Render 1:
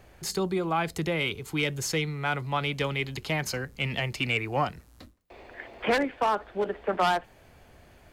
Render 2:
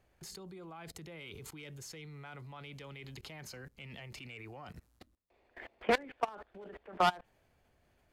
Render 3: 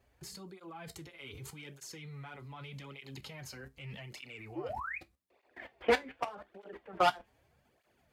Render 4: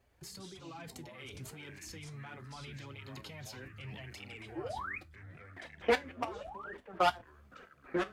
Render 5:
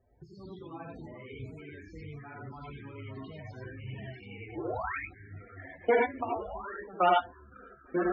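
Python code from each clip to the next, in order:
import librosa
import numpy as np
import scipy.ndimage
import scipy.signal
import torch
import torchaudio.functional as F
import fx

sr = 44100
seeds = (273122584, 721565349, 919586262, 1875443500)

y1 = fx.level_steps(x, sr, step_db=23)
y1 = F.gain(torch.from_numpy(y1), -2.0).numpy()
y2 = fx.spec_paint(y1, sr, seeds[0], shape='rise', start_s=4.55, length_s=0.43, low_hz=290.0, high_hz=2600.0, level_db=-40.0)
y2 = fx.comb_fb(y2, sr, f0_hz=67.0, decay_s=0.18, harmonics='all', damping=0.0, mix_pct=60)
y2 = fx.flanger_cancel(y2, sr, hz=0.83, depth_ms=6.8)
y2 = F.gain(torch.from_numpy(y2), 7.0).numpy()
y3 = fx.echo_pitch(y2, sr, ms=89, semitones=-5, count=2, db_per_echo=-6.0)
y3 = F.gain(torch.from_numpy(y3), -1.0).numpy()
y4 = fx.rev_gated(y3, sr, seeds[1], gate_ms=120, shape='rising', drr_db=-1.5)
y4 = fx.spec_topn(y4, sr, count=32)
y4 = fx.env_lowpass(y4, sr, base_hz=1300.0, full_db=-27.0)
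y4 = F.gain(torch.from_numpy(y4), 1.5).numpy()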